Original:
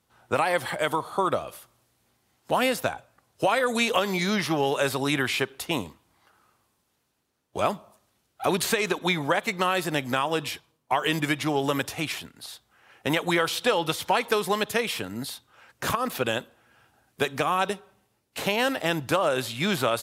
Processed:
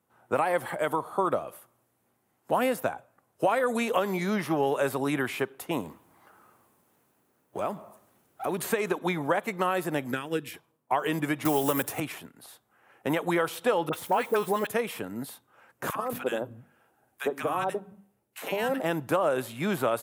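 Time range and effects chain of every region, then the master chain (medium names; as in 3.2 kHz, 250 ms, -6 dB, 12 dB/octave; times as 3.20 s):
5.80–8.59 s: companding laws mixed up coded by mu + compression 1.5:1, threshold -32 dBFS
10.11–10.54 s: transient shaper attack +6 dB, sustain -4 dB + high-order bell 820 Hz -14 dB 1.3 oct
11.45–12.00 s: block-companded coder 5-bit + treble shelf 4.3 kHz +10.5 dB + three bands compressed up and down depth 100%
13.89–14.67 s: word length cut 8-bit, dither triangular + phase dispersion highs, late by 41 ms, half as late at 1.1 kHz
15.90–18.83 s: hum notches 50/100/150/200/250/300 Hz + three bands offset in time highs, mids, lows 50/220 ms, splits 170/1100 Hz
whole clip: Bessel high-pass 160 Hz, order 2; peaking EQ 4.4 kHz -14 dB 1.9 oct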